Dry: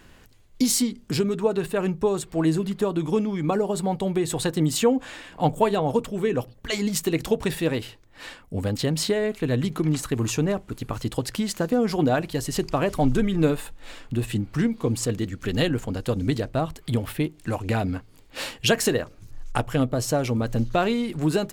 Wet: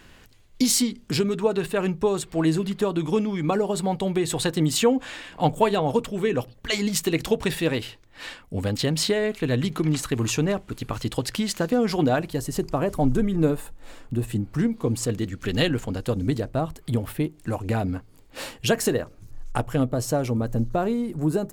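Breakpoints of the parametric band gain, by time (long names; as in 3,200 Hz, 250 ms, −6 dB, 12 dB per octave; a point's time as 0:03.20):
parametric band 3,100 Hz 2.2 octaves
0:11.99 +3.5 dB
0:12.51 −8 dB
0:14.29 −8 dB
0:15.70 +3.5 dB
0:16.32 −5 dB
0:20.20 −5 dB
0:20.71 −14 dB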